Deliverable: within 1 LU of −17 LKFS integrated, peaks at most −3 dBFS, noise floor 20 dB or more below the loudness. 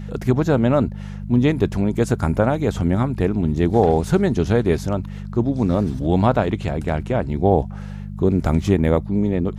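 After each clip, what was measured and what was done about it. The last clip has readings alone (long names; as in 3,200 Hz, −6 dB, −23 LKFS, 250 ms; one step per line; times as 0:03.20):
mains hum 50 Hz; hum harmonics up to 200 Hz; level of the hum −28 dBFS; integrated loudness −20.0 LKFS; sample peak −3.0 dBFS; target loudness −17.0 LKFS
→ hum removal 50 Hz, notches 4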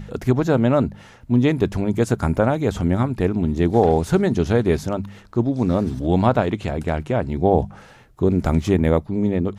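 mains hum none found; integrated loudness −20.5 LKFS; sample peak −4.0 dBFS; target loudness −17.0 LKFS
→ level +3.5 dB
brickwall limiter −3 dBFS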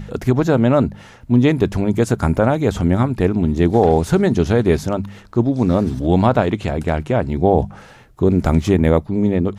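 integrated loudness −17.0 LKFS; sample peak −3.0 dBFS; background noise floor −43 dBFS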